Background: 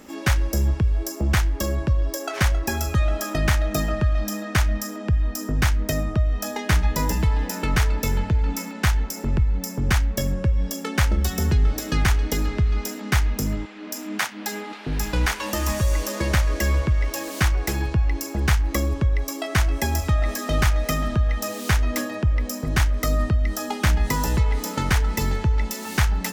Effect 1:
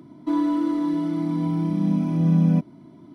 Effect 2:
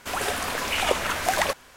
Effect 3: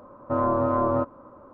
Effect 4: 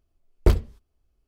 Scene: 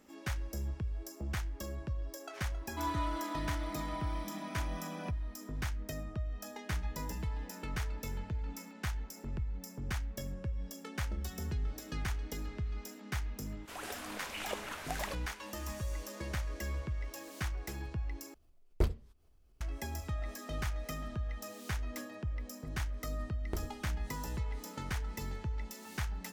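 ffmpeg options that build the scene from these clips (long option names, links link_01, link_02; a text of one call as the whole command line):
ffmpeg -i bed.wav -i cue0.wav -i cue1.wav -i cue2.wav -i cue3.wav -filter_complex "[4:a]asplit=2[link_01][link_02];[0:a]volume=-17dB[link_03];[1:a]highpass=920[link_04];[link_01]acompressor=mode=upward:threshold=-38dB:ratio=2.5:attack=3.2:release=140:knee=2.83:detection=peak[link_05];[link_02]acompressor=threshold=-22dB:ratio=6:attack=3.2:release=140:knee=1:detection=peak[link_06];[link_03]asplit=2[link_07][link_08];[link_07]atrim=end=18.344[link_09];[link_05]atrim=end=1.27,asetpts=PTS-STARTPTS,volume=-12dB[link_10];[link_08]atrim=start=19.606[link_11];[link_04]atrim=end=3.14,asetpts=PTS-STARTPTS,volume=-1dB,afade=type=in:duration=0.004:curve=hsin,afade=type=out:start_time=3.136:duration=0.004:curve=hsin,adelay=2500[link_12];[2:a]atrim=end=1.76,asetpts=PTS-STARTPTS,volume=-16dB,afade=type=in:duration=0.05,afade=type=out:start_time=1.71:duration=0.05,adelay=13620[link_13];[link_06]atrim=end=1.27,asetpts=PTS-STARTPTS,volume=-10dB,afade=type=in:duration=0.004:curve=hsin,afade=type=out:start_time=1.266:duration=0.004:curve=hsin,adelay=23070[link_14];[link_09][link_10]acrossfade=duration=0.004:curve1=hsin:curve2=hsin[link_15];[link_15][link_11]acrossfade=duration=0.004:curve1=hsin:curve2=hsin[link_16];[link_16][link_12][link_13][link_14]amix=inputs=4:normalize=0" out.wav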